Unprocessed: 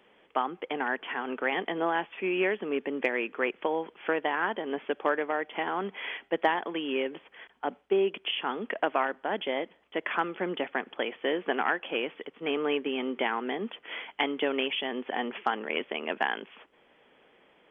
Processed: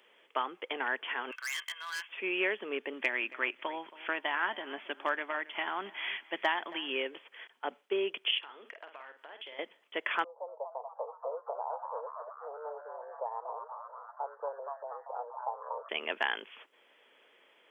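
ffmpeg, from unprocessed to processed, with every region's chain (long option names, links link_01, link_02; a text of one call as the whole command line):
ffmpeg -i in.wav -filter_complex "[0:a]asettb=1/sr,asplit=3[link_01][link_02][link_03];[link_01]atrim=end=1.314[link_04];[link_02]atrim=start=1.31:end=2.09,asetpts=PTS-STARTPTS,afade=type=in:duration=0.004:curve=qsin,afade=type=out:start_time=0.776:duration=0.004:curve=qsin,highpass=frequency=1300:width=0.5412,highpass=frequency=1300:width=1.3066,aecho=1:1:1.9:0.53,atrim=end_sample=34398,asoftclip=type=hard:threshold=-33.5dB[link_05];[link_03]atrim=start=2.086[link_06];[link_04][link_05]acrossfade=duration=0.004:curve1=hsin:curve2=qsin[link_07];[link_07][link_06]acrossfade=duration=0.004:curve1=qsin:curve2=hsin,asettb=1/sr,asplit=3[link_08][link_09][link_10];[link_08]atrim=end=2.934[link_11];[link_09]atrim=start=2.93:end=6.9,asetpts=PTS-STARTPTS,afade=type=in:duration=0.004:curve=qsin,afade=type=out:start_time=3.966:duration=0.004:curve=qsin,equalizer=frequency=470:width_type=o:width=0.29:gain=-14,asplit=2[link_12][link_13];[link_13]adelay=274,lowpass=frequency=3300:poles=1,volume=-18dB,asplit=2[link_14][link_15];[link_15]adelay=274,lowpass=frequency=3300:poles=1,volume=0.26[link_16];[link_12][link_14][link_16]amix=inputs=3:normalize=0,atrim=end_sample=175077[link_17];[link_10]atrim=start=6.896[link_18];[link_11][link_17]acrossfade=duration=0.004:curve1=hsin:curve2=qsin[link_19];[link_19][link_18]acrossfade=duration=0.004:curve1=qsin:curve2=hsin,asettb=1/sr,asplit=3[link_20][link_21][link_22];[link_20]atrim=end=8.384[link_23];[link_21]atrim=start=8.38:end=9.59,asetpts=PTS-STARTPTS,afade=type=in:duration=0.004:curve=qsin,afade=type=out:start_time=1.206:duration=0.004:curve=qsin,equalizer=frequency=160:width=0.8:gain=-14,acompressor=threshold=-44dB:ratio=4:attack=3.2:release=140:knee=1:detection=peak,asplit=2[link_24][link_25];[link_25]adelay=49,volume=-8dB[link_26];[link_24][link_26]amix=inputs=2:normalize=0,atrim=end_sample=53361[link_27];[link_22]atrim=start=9.586[link_28];[link_23][link_27]acrossfade=duration=0.004:curve1=hsin:curve2=qsin[link_29];[link_29][link_28]acrossfade=duration=0.004:curve1=qsin:curve2=hsin,asettb=1/sr,asplit=3[link_30][link_31][link_32];[link_30]atrim=end=10.244[link_33];[link_31]atrim=start=10.24:end=15.89,asetpts=PTS-STARTPTS,afade=type=in:duration=0.004:curve=qsin,afade=type=out:start_time=5.646:duration=0.004:curve=qsin,asuperpass=centerf=690:order=12:qfactor=1.3,asplit=8[link_34][link_35][link_36][link_37][link_38][link_39][link_40][link_41];[link_35]adelay=238,afreqshift=130,volume=-6dB[link_42];[link_36]adelay=476,afreqshift=260,volume=-11dB[link_43];[link_37]adelay=714,afreqshift=390,volume=-16.1dB[link_44];[link_38]adelay=952,afreqshift=520,volume=-21.1dB[link_45];[link_39]adelay=1190,afreqshift=650,volume=-26.1dB[link_46];[link_40]adelay=1428,afreqshift=780,volume=-31.2dB[link_47];[link_41]adelay=1666,afreqshift=910,volume=-36.2dB[link_48];[link_34][link_42][link_43][link_44][link_45][link_46][link_47][link_48]amix=inputs=8:normalize=0,atrim=end_sample=249165[link_49];[link_32]atrim=start=15.886[link_50];[link_33][link_49]acrossfade=duration=0.004:curve1=hsin:curve2=qsin[link_51];[link_51][link_50]acrossfade=duration=0.004:curve1=qsin:curve2=hsin,highpass=380,highshelf=frequency=2700:gain=10,bandreject=frequency=770:width=12,volume=-4dB" out.wav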